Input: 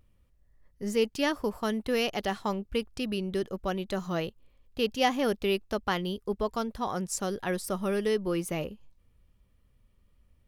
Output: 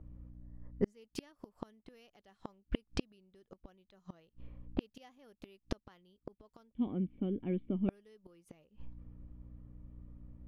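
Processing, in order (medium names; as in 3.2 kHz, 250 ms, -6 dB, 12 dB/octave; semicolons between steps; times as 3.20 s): hum 60 Hz, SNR 29 dB; 6.72–7.89 s: cascade formant filter i; level-controlled noise filter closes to 870 Hz, open at -27 dBFS; inverted gate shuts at -26 dBFS, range -41 dB; trim +8 dB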